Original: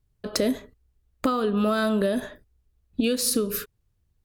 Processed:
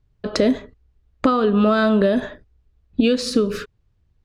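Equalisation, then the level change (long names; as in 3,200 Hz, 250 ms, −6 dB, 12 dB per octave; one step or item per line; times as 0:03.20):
high-frequency loss of the air 130 metres
+7.0 dB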